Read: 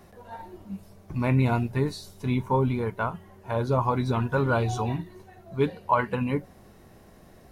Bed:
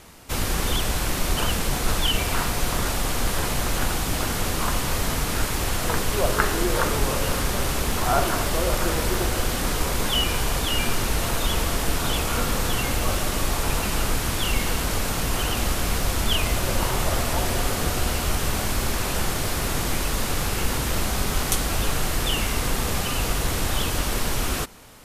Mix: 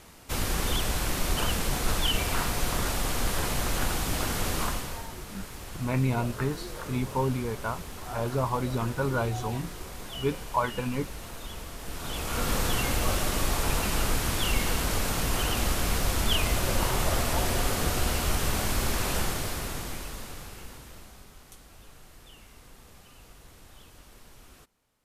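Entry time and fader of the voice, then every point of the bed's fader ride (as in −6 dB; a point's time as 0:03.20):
4.65 s, −4.0 dB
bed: 0:04.62 −4 dB
0:05.08 −16.5 dB
0:11.77 −16.5 dB
0:12.52 −3 dB
0:19.16 −3 dB
0:21.38 −27.5 dB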